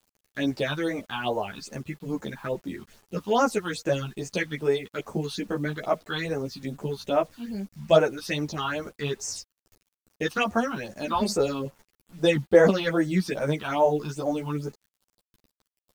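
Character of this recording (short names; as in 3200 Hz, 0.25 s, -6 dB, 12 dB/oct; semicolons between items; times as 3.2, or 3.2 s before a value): phasing stages 6, 2.4 Hz, lowest notch 510–3800 Hz; a quantiser's noise floor 10-bit, dither none; a shimmering, thickened sound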